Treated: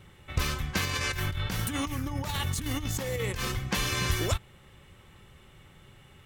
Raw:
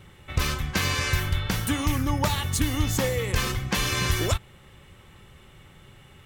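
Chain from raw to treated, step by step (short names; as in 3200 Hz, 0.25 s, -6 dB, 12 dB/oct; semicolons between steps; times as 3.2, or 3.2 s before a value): 0.85–3.45 negative-ratio compressor -28 dBFS, ratio -1; gain -3.5 dB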